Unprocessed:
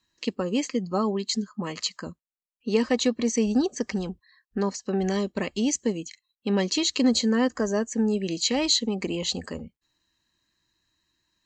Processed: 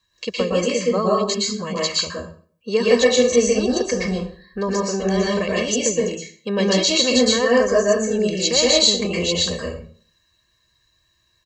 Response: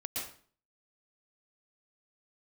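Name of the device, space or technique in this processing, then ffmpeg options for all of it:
microphone above a desk: -filter_complex "[0:a]aecho=1:1:1.8:0.79[s0];[1:a]atrim=start_sample=2205[s1];[s0][s1]afir=irnorm=-1:irlink=0,volume=1.78"

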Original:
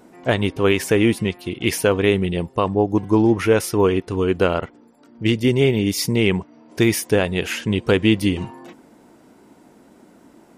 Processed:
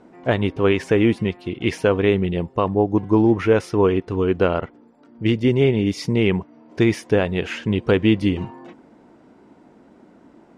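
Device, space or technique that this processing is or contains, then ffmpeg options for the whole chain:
through cloth: -af "lowpass=7000,highshelf=f=3700:g=-11"

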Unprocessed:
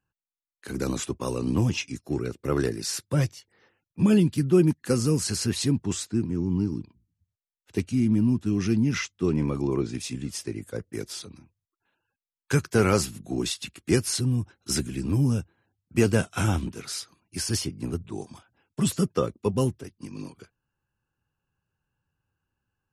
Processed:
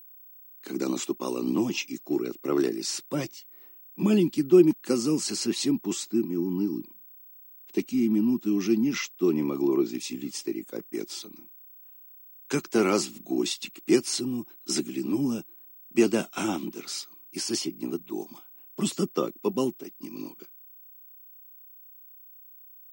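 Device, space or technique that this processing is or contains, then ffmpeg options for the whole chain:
old television with a line whistle: -af "highpass=f=210:w=0.5412,highpass=f=210:w=1.3066,equalizer=f=340:t=q:w=4:g=6,equalizer=f=480:t=q:w=4:g=-6,equalizer=f=1600:t=q:w=4:g=-8,lowpass=f=8500:w=0.5412,lowpass=f=8500:w=1.3066,aeval=exprs='val(0)+0.00447*sin(2*PI*15734*n/s)':c=same"

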